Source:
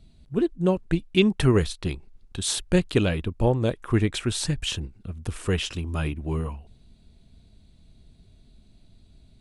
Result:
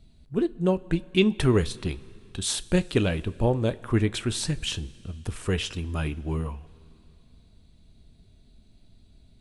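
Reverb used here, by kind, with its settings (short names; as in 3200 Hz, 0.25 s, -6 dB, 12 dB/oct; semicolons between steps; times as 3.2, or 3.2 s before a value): two-slope reverb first 0.22 s, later 2.9 s, from -18 dB, DRR 13.5 dB; gain -1.5 dB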